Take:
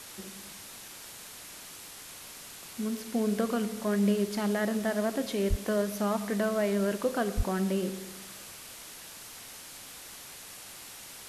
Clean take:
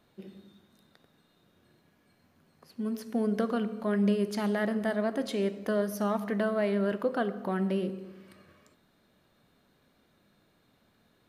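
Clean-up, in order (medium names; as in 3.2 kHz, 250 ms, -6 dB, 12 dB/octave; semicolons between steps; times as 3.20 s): de-click; de-plosive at 5.49/7.36 s; noise print and reduce 21 dB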